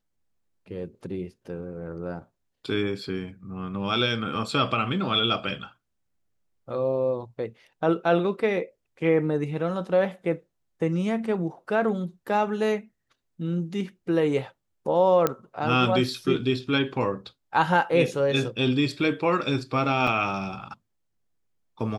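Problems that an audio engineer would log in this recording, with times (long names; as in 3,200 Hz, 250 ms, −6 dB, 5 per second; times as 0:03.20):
0:15.27: click −9 dBFS
0:20.07: drop-out 4.1 ms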